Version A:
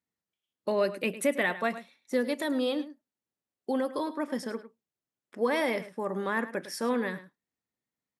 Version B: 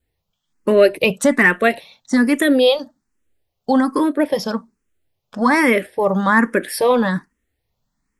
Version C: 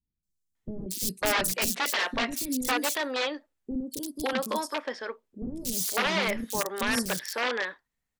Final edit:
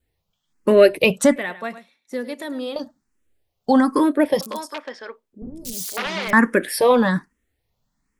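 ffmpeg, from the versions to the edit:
-filter_complex "[1:a]asplit=3[a][b][c];[a]atrim=end=1.362[d];[0:a]atrim=start=1.358:end=2.762[e];[b]atrim=start=2.758:end=4.412[f];[2:a]atrim=start=4.408:end=6.332[g];[c]atrim=start=6.328[h];[d][e]acrossfade=d=0.004:c1=hsin:c2=hsin[i];[i][f]acrossfade=d=0.004:c1=hsin:c2=hsin[j];[j][g]acrossfade=d=0.004:c1=hsin:c2=hsin[k];[k][h]acrossfade=d=0.004:c1=hsin:c2=hsin"

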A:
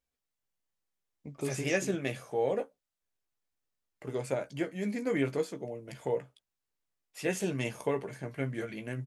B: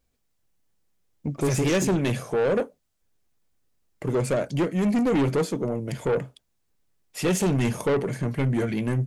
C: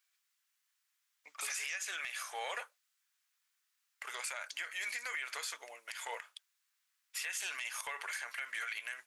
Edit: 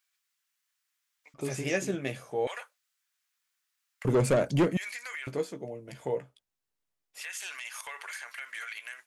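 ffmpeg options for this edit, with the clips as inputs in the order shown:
-filter_complex "[0:a]asplit=2[a][b];[2:a]asplit=4[c][d][e][f];[c]atrim=end=1.342[g];[a]atrim=start=1.338:end=2.472[h];[d]atrim=start=2.468:end=4.052[i];[1:a]atrim=start=4.048:end=4.772[j];[e]atrim=start=4.768:end=5.272[k];[b]atrim=start=5.268:end=7.212[l];[f]atrim=start=7.208[m];[g][h]acrossfade=d=0.004:c1=hsin:c2=hsin[n];[n][i]acrossfade=d=0.004:c1=hsin:c2=hsin[o];[o][j]acrossfade=d=0.004:c1=hsin:c2=hsin[p];[p][k]acrossfade=d=0.004:c1=hsin:c2=hsin[q];[q][l]acrossfade=d=0.004:c1=hsin:c2=hsin[r];[r][m]acrossfade=d=0.004:c1=hsin:c2=hsin"

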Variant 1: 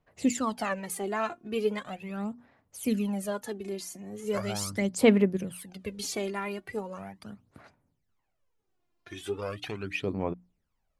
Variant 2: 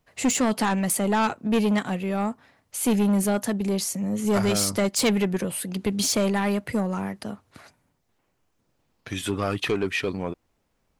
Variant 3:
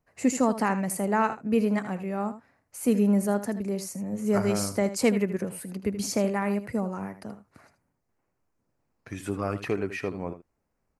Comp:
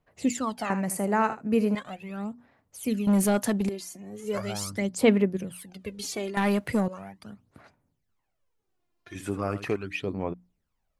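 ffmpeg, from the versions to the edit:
-filter_complex "[2:a]asplit=2[a][b];[1:a]asplit=2[c][d];[0:a]asplit=5[e][f][g][h][i];[e]atrim=end=0.702[j];[a]atrim=start=0.698:end=1.752[k];[f]atrim=start=1.748:end=3.072[l];[c]atrim=start=3.068:end=3.692[m];[g]atrim=start=3.688:end=6.372[n];[d]atrim=start=6.368:end=6.882[o];[h]atrim=start=6.878:end=9.152[p];[b]atrim=start=9.148:end=9.762[q];[i]atrim=start=9.758[r];[j][k]acrossfade=d=0.004:c1=hsin:c2=hsin[s];[s][l]acrossfade=d=0.004:c1=hsin:c2=hsin[t];[t][m]acrossfade=d=0.004:c1=hsin:c2=hsin[u];[u][n]acrossfade=d=0.004:c1=hsin:c2=hsin[v];[v][o]acrossfade=d=0.004:c1=hsin:c2=hsin[w];[w][p]acrossfade=d=0.004:c1=hsin:c2=hsin[x];[x][q]acrossfade=d=0.004:c1=hsin:c2=hsin[y];[y][r]acrossfade=d=0.004:c1=hsin:c2=hsin"

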